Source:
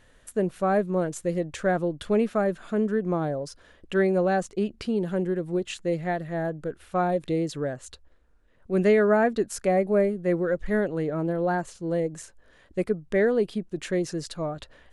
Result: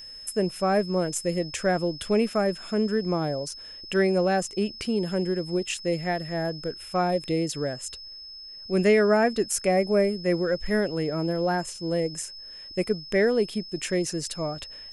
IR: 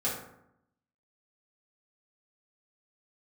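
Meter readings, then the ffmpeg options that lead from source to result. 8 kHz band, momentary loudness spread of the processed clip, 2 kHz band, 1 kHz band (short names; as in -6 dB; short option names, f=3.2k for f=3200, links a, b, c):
+8.5 dB, 11 LU, +1.5 dB, 0.0 dB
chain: -af "aeval=exprs='val(0)+0.00562*sin(2*PI*5200*n/s)':c=same,aexciter=amount=1.3:drive=7.1:freq=2.1k"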